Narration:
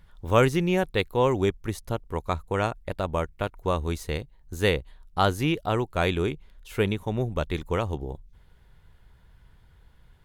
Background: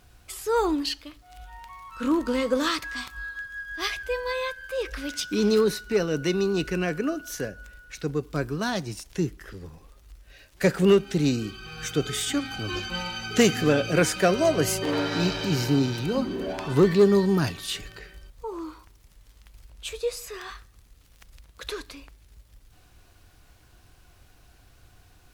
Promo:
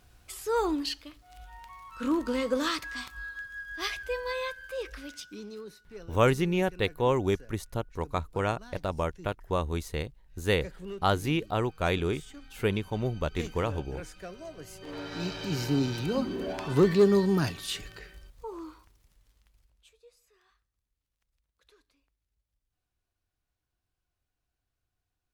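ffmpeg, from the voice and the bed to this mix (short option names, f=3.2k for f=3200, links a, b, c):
-filter_complex "[0:a]adelay=5850,volume=-3dB[a];[1:a]volume=15dB,afade=t=out:st=4.56:d=0.9:silence=0.125893,afade=t=in:st=14.7:d=1.3:silence=0.112202,afade=t=out:st=18.04:d=1.89:silence=0.0473151[b];[a][b]amix=inputs=2:normalize=0"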